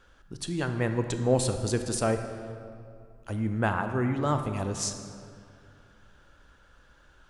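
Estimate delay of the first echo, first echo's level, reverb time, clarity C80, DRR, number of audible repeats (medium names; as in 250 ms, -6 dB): no echo, no echo, 2.4 s, 9.0 dB, 7.0 dB, no echo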